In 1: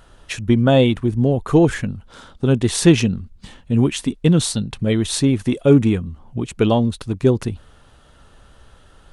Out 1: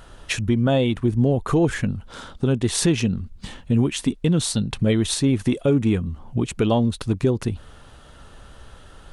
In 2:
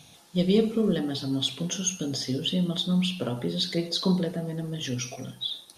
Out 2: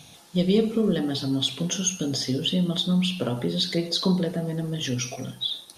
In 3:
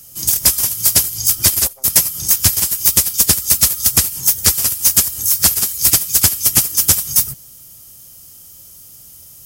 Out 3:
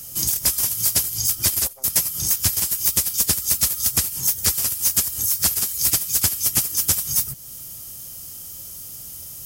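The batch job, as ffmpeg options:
-filter_complex "[0:a]asplit=2[link_01][link_02];[link_02]acompressor=threshold=-26dB:ratio=6,volume=-1.5dB[link_03];[link_01][link_03]amix=inputs=2:normalize=0,alimiter=limit=-8dB:level=0:latency=1:release=323,volume=-1.5dB"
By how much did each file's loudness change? −4.0, +2.5, −6.5 LU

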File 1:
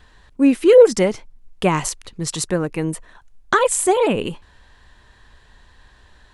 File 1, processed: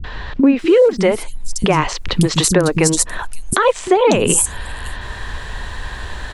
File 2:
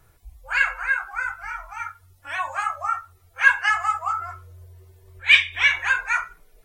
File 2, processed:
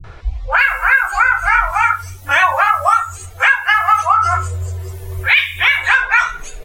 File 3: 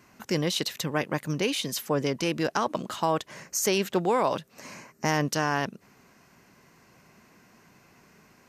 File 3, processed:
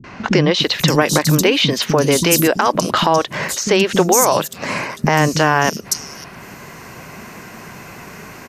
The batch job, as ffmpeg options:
-filter_complex "[0:a]acompressor=threshold=-31dB:ratio=16,acrossover=split=250|4900[link_01][link_02][link_03];[link_02]adelay=40[link_04];[link_03]adelay=590[link_05];[link_01][link_04][link_05]amix=inputs=3:normalize=0,alimiter=level_in=24dB:limit=-1dB:release=50:level=0:latency=1,volume=-1dB"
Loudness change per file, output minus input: +2.5, +7.5, +12.5 LU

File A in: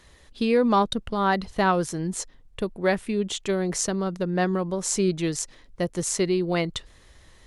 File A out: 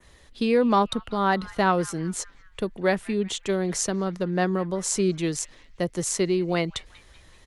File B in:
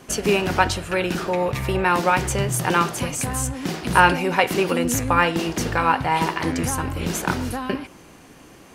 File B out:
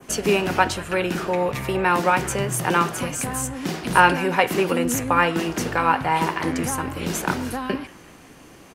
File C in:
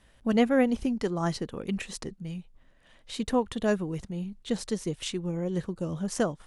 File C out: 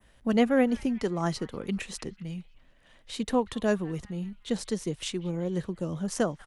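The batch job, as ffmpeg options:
-filter_complex "[0:a]adynamicequalizer=threshold=0.0112:dfrequency=4400:dqfactor=1.1:tfrequency=4400:tqfactor=1.1:attack=5:release=100:ratio=0.375:range=2:mode=cutabove:tftype=bell,acrossover=split=130|1000|3500[link_01][link_02][link_03][link_04];[link_01]asoftclip=type=tanh:threshold=-38.5dB[link_05];[link_03]asplit=6[link_06][link_07][link_08][link_09][link_10][link_11];[link_07]adelay=191,afreqshift=96,volume=-16dB[link_12];[link_08]adelay=382,afreqshift=192,volume=-21.5dB[link_13];[link_09]adelay=573,afreqshift=288,volume=-27dB[link_14];[link_10]adelay=764,afreqshift=384,volume=-32.5dB[link_15];[link_11]adelay=955,afreqshift=480,volume=-38.1dB[link_16];[link_06][link_12][link_13][link_14][link_15][link_16]amix=inputs=6:normalize=0[link_17];[link_05][link_02][link_17][link_04]amix=inputs=4:normalize=0"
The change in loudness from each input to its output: 0.0, −0.5, 0.0 LU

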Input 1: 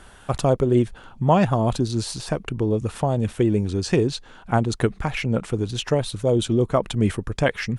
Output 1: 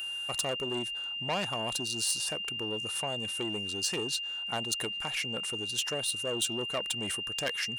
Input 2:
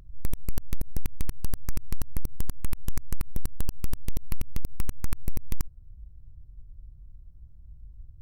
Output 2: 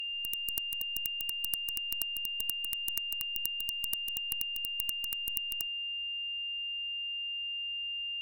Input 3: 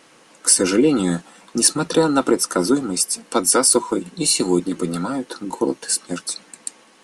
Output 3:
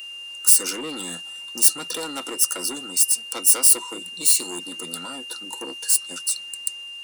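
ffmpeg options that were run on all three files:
-af "aeval=exprs='(tanh(6.31*val(0)+0.25)-tanh(0.25))/6.31':channel_layout=same,aeval=exprs='val(0)+0.0316*sin(2*PI*2800*n/s)':channel_layout=same,aemphasis=mode=production:type=riaa,volume=-8.5dB"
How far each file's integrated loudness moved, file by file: −8.5, +5.0, 0.0 LU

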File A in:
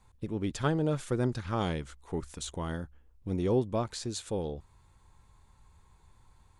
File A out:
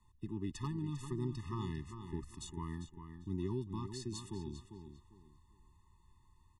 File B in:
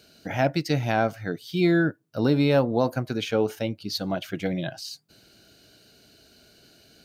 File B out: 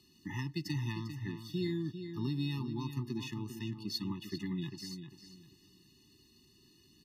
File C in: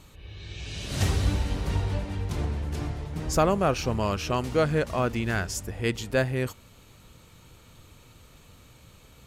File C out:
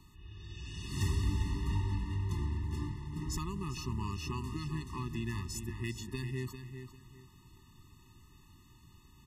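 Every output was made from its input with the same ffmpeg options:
-filter_complex "[0:a]acrossover=split=130|3000[link_01][link_02][link_03];[link_02]acompressor=threshold=-28dB:ratio=8[link_04];[link_01][link_04][link_03]amix=inputs=3:normalize=0,aeval=exprs='0.141*(abs(mod(val(0)/0.141+3,4)-2)-1)':channel_layout=same,asplit=2[link_05][link_06];[link_06]adelay=398,lowpass=frequency=4600:poles=1,volume=-8.5dB,asplit=2[link_07][link_08];[link_08]adelay=398,lowpass=frequency=4600:poles=1,volume=0.27,asplit=2[link_09][link_10];[link_10]adelay=398,lowpass=frequency=4600:poles=1,volume=0.27[link_11];[link_07][link_09][link_11]amix=inputs=3:normalize=0[link_12];[link_05][link_12]amix=inputs=2:normalize=0,afftfilt=real='re*eq(mod(floor(b*sr/1024/420),2),0)':imag='im*eq(mod(floor(b*sr/1024/420),2),0)':win_size=1024:overlap=0.75,volume=-6dB"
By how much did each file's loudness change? −9.0, −13.0, −9.5 LU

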